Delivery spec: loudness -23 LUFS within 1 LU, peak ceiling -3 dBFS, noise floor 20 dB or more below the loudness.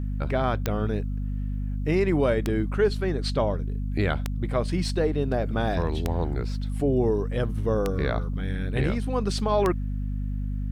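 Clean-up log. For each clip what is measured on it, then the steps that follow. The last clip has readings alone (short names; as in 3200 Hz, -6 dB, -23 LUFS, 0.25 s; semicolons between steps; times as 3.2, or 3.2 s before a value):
clicks 6; hum 50 Hz; harmonics up to 250 Hz; hum level -26 dBFS; loudness -26.5 LUFS; peak -8.0 dBFS; loudness target -23.0 LUFS
-> de-click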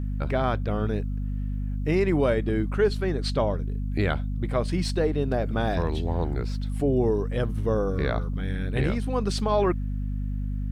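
clicks 0; hum 50 Hz; harmonics up to 250 Hz; hum level -26 dBFS
-> notches 50/100/150/200/250 Hz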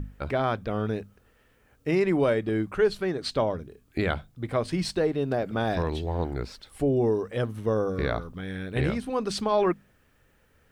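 hum none; loudness -28.0 LUFS; peak -12.5 dBFS; loudness target -23.0 LUFS
-> gain +5 dB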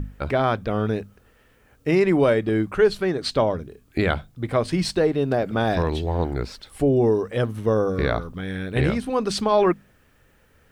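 loudness -23.0 LUFS; peak -7.5 dBFS; noise floor -58 dBFS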